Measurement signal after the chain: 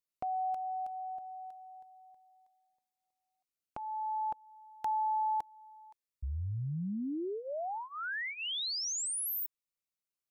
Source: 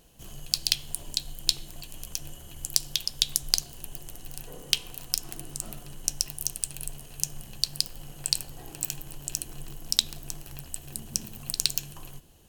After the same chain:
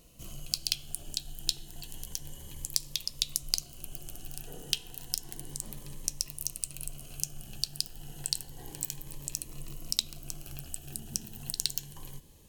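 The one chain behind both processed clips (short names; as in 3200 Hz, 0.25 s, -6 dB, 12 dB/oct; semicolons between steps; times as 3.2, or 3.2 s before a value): in parallel at +2 dB: compressor, threshold -38 dBFS; on the sum: cascading phaser rising 0.31 Hz; gain -6.5 dB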